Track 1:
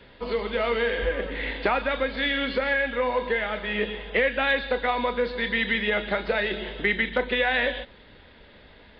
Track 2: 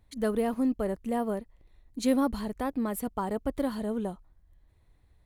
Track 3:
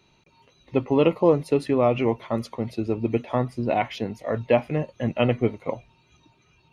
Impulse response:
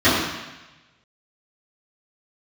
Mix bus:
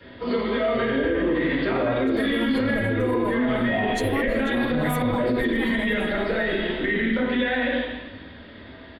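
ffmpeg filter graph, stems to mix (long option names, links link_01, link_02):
-filter_complex "[0:a]acrossover=split=330[link_01][link_02];[link_02]acompressor=threshold=-31dB:ratio=2.5[link_03];[link_01][link_03]amix=inputs=2:normalize=0,volume=-2.5dB,asplit=2[link_04][link_05];[link_05]volume=-15.5dB[link_06];[1:a]asubboost=boost=9:cutoff=54,aecho=1:1:6.3:0.94,adelay=1950,volume=0.5dB,asplit=2[link_07][link_08];[link_08]volume=-14.5dB[link_09];[2:a]lowpass=1300,dynaudnorm=framelen=230:gausssize=11:maxgain=11.5dB,asplit=2[link_10][link_11];[link_11]afreqshift=-0.95[link_12];[link_10][link_12]amix=inputs=2:normalize=1,volume=-11dB,asplit=3[link_13][link_14][link_15];[link_14]volume=-17dB[link_16];[link_15]apad=whole_len=318175[link_17];[link_07][link_17]sidechaincompress=threshold=-31dB:ratio=8:attack=5.8:release=175[link_18];[3:a]atrim=start_sample=2205[link_19];[link_06][link_16]amix=inputs=2:normalize=0[link_20];[link_20][link_19]afir=irnorm=-1:irlink=0[link_21];[link_09]aecho=0:1:491|982|1473|1964|2455:1|0.36|0.13|0.0467|0.0168[link_22];[link_04][link_18][link_13][link_21][link_22]amix=inputs=5:normalize=0,alimiter=limit=-15dB:level=0:latency=1:release=40"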